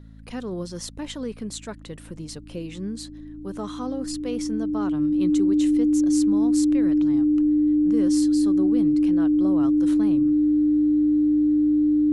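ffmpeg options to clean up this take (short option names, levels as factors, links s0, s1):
-af "bandreject=f=54.5:t=h:w=4,bandreject=f=109:t=h:w=4,bandreject=f=163.5:t=h:w=4,bandreject=f=218:t=h:w=4,bandreject=f=272.5:t=h:w=4,bandreject=f=300:w=30"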